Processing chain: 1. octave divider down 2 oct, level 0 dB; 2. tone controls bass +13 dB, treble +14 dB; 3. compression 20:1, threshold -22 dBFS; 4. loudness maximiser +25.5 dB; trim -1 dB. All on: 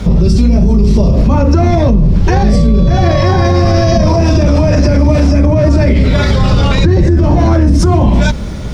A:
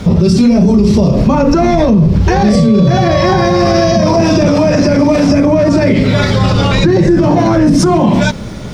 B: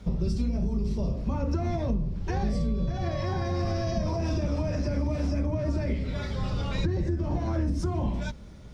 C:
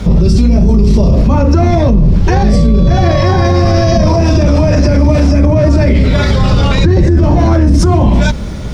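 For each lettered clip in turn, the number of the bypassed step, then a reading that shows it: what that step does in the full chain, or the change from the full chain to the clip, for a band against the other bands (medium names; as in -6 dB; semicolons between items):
1, 125 Hz band -6.0 dB; 4, crest factor change +5.5 dB; 3, mean gain reduction 3.5 dB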